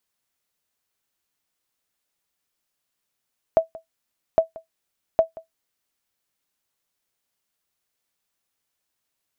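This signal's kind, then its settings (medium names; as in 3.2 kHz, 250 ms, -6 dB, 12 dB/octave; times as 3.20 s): sonar ping 652 Hz, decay 0.13 s, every 0.81 s, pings 3, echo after 0.18 s, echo -21.5 dB -7 dBFS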